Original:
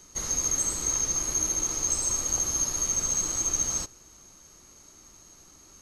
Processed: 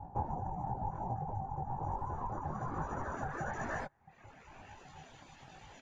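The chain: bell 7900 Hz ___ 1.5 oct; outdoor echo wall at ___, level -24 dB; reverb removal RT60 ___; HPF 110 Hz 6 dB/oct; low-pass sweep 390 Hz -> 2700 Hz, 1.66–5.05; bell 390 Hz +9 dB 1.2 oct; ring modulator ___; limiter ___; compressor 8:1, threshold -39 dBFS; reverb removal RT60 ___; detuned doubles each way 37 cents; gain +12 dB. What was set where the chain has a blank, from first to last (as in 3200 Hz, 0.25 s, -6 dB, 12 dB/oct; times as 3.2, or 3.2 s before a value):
-2.5 dB, 250 m, 0.65 s, 460 Hz, -26 dBFS, 1.4 s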